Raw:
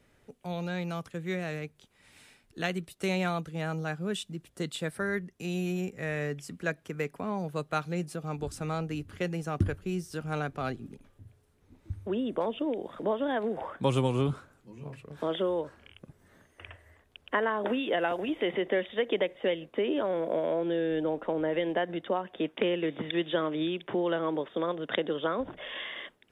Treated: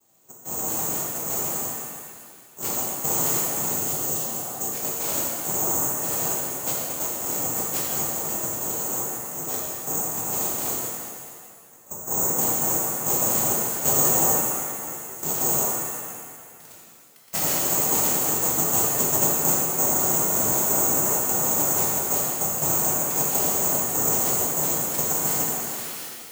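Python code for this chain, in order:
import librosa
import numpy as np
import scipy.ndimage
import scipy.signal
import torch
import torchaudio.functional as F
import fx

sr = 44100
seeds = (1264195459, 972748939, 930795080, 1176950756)

y = fx.noise_vocoder(x, sr, seeds[0], bands=2)
y = (np.kron(scipy.signal.resample_poly(y, 1, 6), np.eye(6)[0]) * 6)[:len(y)]
y = fx.spec_repair(y, sr, seeds[1], start_s=3.75, length_s=0.89, low_hz=600.0, high_hz=2600.0, source='after')
y = fx.auto_swell(y, sr, attack_ms=251.0, at=(8.7, 9.86), fade=0.02)
y = fx.rev_shimmer(y, sr, seeds[2], rt60_s=2.0, semitones=7, shimmer_db=-8, drr_db=-4.5)
y = y * 10.0 ** (-6.0 / 20.0)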